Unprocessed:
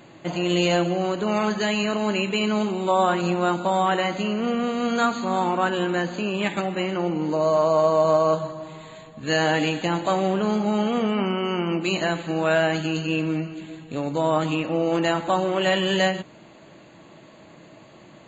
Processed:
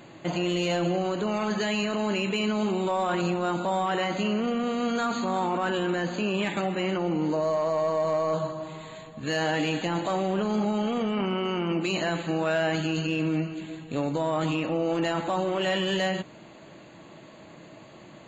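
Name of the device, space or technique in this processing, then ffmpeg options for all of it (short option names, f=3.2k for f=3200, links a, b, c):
soft clipper into limiter: -af "asoftclip=type=tanh:threshold=-11dB,alimiter=limit=-19dB:level=0:latency=1:release=16"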